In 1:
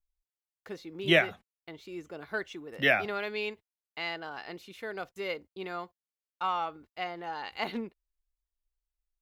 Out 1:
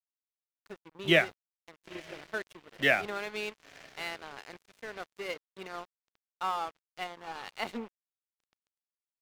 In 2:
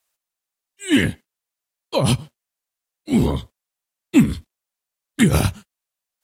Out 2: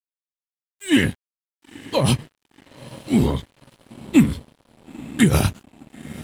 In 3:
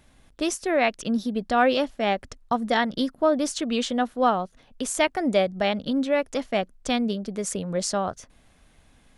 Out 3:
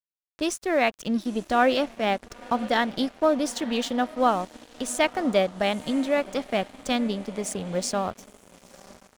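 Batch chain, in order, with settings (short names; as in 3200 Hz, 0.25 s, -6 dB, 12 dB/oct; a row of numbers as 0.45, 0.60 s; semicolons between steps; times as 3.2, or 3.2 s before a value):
diffused feedback echo 0.942 s, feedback 49%, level -16 dB; crossover distortion -41.5 dBFS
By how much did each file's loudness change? -0.5, -0.5, -0.5 LU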